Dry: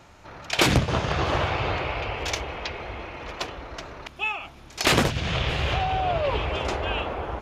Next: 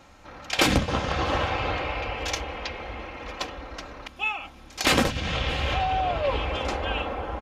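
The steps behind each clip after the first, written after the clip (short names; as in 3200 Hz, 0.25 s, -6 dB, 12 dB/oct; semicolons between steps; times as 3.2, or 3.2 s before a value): comb 3.8 ms, depth 46%; gain -1.5 dB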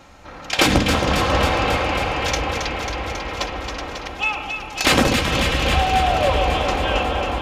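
in parallel at -11 dB: soft clip -21 dBFS, distortion -12 dB; on the sum: echo with dull and thin repeats by turns 0.136 s, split 980 Hz, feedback 87%, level -5 dB; gain +3.5 dB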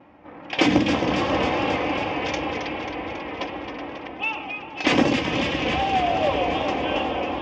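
vibrato 2.6 Hz 73 cents; speaker cabinet 130–5300 Hz, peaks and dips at 300 Hz +7 dB, 1400 Hz -9 dB, 4100 Hz -10 dB; low-pass opened by the level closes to 1900 Hz, open at -14.5 dBFS; gain -3 dB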